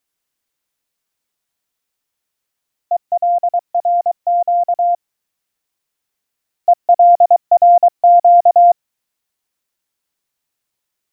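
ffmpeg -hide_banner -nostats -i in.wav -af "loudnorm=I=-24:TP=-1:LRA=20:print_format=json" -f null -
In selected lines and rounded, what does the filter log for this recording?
"input_i" : "-12.6",
"input_tp" : "-4.0",
"input_lra" : "9.2",
"input_thresh" : "-22.8",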